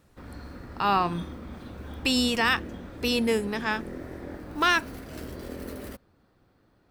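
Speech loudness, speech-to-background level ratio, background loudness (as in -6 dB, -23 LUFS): -26.0 LUFS, 14.5 dB, -40.5 LUFS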